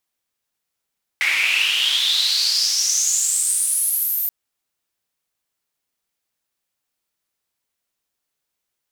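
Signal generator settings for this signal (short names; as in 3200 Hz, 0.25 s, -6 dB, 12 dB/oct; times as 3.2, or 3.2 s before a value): swept filtered noise white, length 3.08 s bandpass, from 2100 Hz, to 14000 Hz, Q 8, exponential, gain ramp -8 dB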